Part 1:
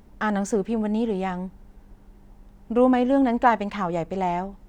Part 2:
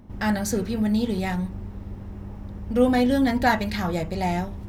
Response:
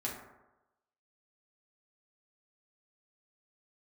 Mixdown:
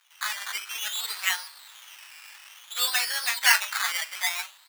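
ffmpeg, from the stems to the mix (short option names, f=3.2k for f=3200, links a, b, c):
-filter_complex "[0:a]alimiter=limit=-16.5dB:level=0:latency=1,volume=-5.5dB[a];[1:a]adelay=10,volume=0.5dB[b];[a][b]amix=inputs=2:normalize=0,acrusher=samples=13:mix=1:aa=0.000001:lfo=1:lforange=7.8:lforate=0.56,dynaudnorm=f=230:g=7:m=8.5dB,highpass=f=1.3k:w=0.5412,highpass=f=1.3k:w=1.3066"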